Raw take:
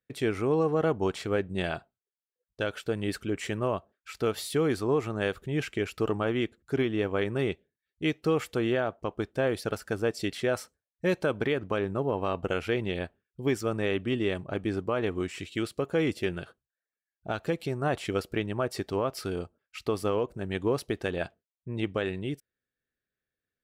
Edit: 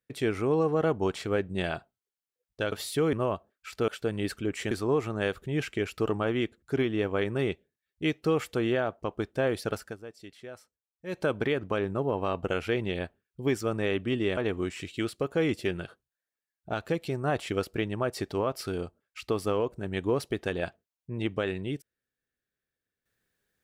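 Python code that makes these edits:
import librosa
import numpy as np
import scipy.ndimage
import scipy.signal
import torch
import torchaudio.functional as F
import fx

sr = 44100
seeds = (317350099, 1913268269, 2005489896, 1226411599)

y = fx.edit(x, sr, fx.swap(start_s=2.72, length_s=0.83, other_s=4.3, other_length_s=0.41),
    fx.fade_down_up(start_s=9.79, length_s=1.45, db=-16.0, fade_s=0.18),
    fx.cut(start_s=14.37, length_s=0.58), tone=tone)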